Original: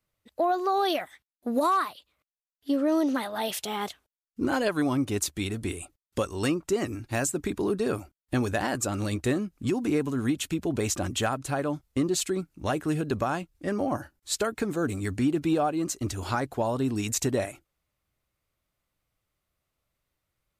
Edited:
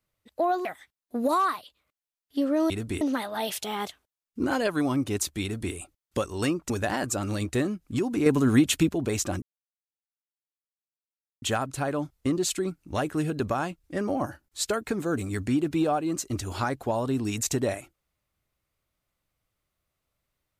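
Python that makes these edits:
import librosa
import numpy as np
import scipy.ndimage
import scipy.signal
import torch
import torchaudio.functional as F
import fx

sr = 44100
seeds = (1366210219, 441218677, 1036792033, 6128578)

y = fx.edit(x, sr, fx.cut(start_s=0.65, length_s=0.32),
    fx.duplicate(start_s=5.44, length_s=0.31, to_s=3.02),
    fx.cut(start_s=6.71, length_s=1.7),
    fx.clip_gain(start_s=9.97, length_s=0.63, db=7.0),
    fx.insert_silence(at_s=11.13, length_s=2.0), tone=tone)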